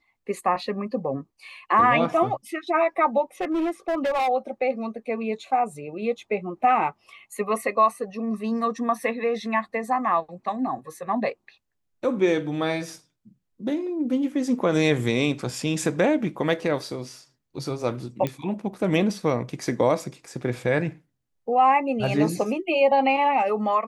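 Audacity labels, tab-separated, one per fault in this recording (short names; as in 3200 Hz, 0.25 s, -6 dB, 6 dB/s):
3.410000	4.290000	clipped -21 dBFS
18.270000	18.270000	pop -14 dBFS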